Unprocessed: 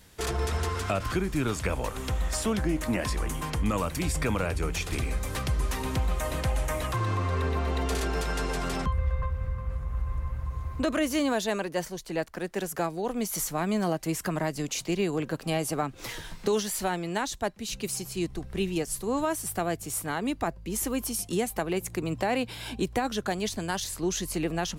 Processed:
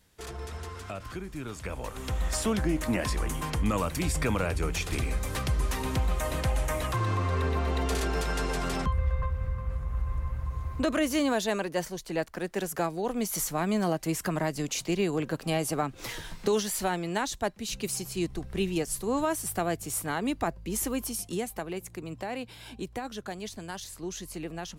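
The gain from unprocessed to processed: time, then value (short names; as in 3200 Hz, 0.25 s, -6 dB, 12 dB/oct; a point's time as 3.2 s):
1.48 s -10 dB
2.27 s 0 dB
20.75 s 0 dB
21.96 s -8 dB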